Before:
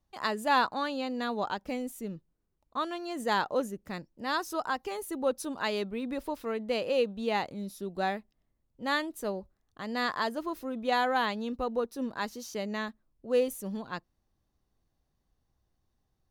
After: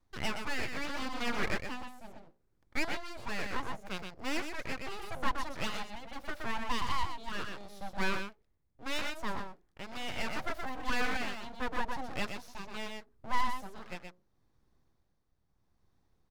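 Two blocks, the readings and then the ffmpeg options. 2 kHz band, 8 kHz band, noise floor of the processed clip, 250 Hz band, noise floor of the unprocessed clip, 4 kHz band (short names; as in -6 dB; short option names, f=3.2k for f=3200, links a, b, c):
-1.5 dB, -2.0 dB, -74 dBFS, -7.0 dB, -78 dBFS, -2.0 dB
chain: -filter_complex "[0:a]equalizer=f=630:t=o:w=0.49:g=-5,acrossover=split=380[a][b];[a]acompressor=threshold=-52dB:ratio=6[c];[b]asoftclip=type=hard:threshold=-26.5dB[d];[c][d]amix=inputs=2:normalize=0,acrossover=split=5000[e][f];[f]acompressor=threshold=-55dB:ratio=4:attack=1:release=60[g];[e][g]amix=inputs=2:normalize=0,bandreject=f=60:t=h:w=6,bandreject=f=120:t=h:w=6,bandreject=f=180:t=h:w=6,bandreject=f=240:t=h:w=6,bandreject=f=300:t=h:w=6,bandreject=f=360:t=h:w=6,bandreject=f=420:t=h:w=6,asplit=2[h][i];[i]aecho=0:1:122:0.531[j];[h][j]amix=inputs=2:normalize=0,tremolo=f=0.75:d=0.56,aemphasis=mode=reproduction:type=cd,bandreject=f=2.9k:w=7.3,aeval=exprs='abs(val(0))':c=same,volume=5.5dB"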